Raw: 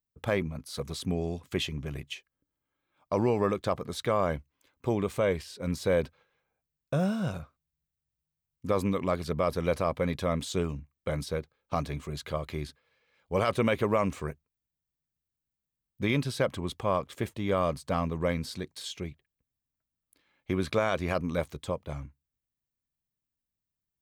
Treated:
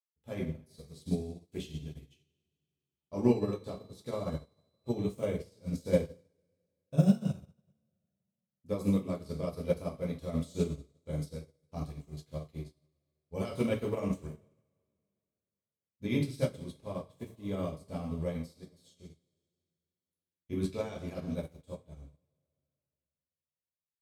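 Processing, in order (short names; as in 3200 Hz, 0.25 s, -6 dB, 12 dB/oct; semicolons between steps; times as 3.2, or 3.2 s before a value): bell 1400 Hz -14 dB 2.2 oct; two-slope reverb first 0.53 s, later 3.1 s, from -15 dB, DRR -3.5 dB; 3.3–5.12 whine 4000 Hz -50 dBFS; upward expander 2.5:1, over -43 dBFS; gain +2 dB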